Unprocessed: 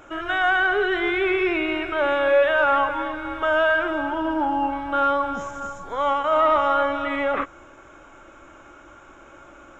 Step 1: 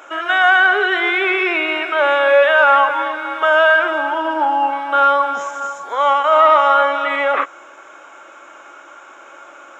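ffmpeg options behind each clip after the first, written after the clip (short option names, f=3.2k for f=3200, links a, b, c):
-af "highpass=570,volume=8.5dB"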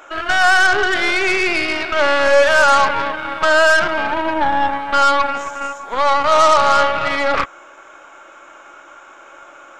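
-af "aeval=exprs='0.794*(cos(1*acos(clip(val(0)/0.794,-1,1)))-cos(1*PI/2))+0.0891*(cos(8*acos(clip(val(0)/0.794,-1,1)))-cos(8*PI/2))':c=same,volume=-1dB"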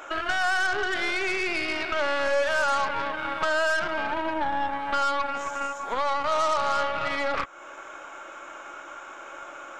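-af "acompressor=threshold=-28dB:ratio=2.5"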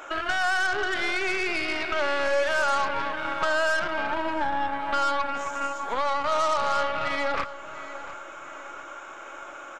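-filter_complex "[0:a]asplit=2[a][b];[b]adelay=699,lowpass=f=3.4k:p=1,volume=-14dB,asplit=2[c][d];[d]adelay=699,lowpass=f=3.4k:p=1,volume=0.43,asplit=2[e][f];[f]adelay=699,lowpass=f=3.4k:p=1,volume=0.43,asplit=2[g][h];[h]adelay=699,lowpass=f=3.4k:p=1,volume=0.43[i];[a][c][e][g][i]amix=inputs=5:normalize=0"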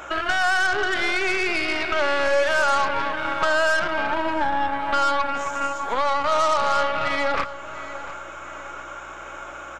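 -af "aeval=exprs='val(0)+0.00141*(sin(2*PI*60*n/s)+sin(2*PI*2*60*n/s)/2+sin(2*PI*3*60*n/s)/3+sin(2*PI*4*60*n/s)/4+sin(2*PI*5*60*n/s)/5)':c=same,volume=4dB"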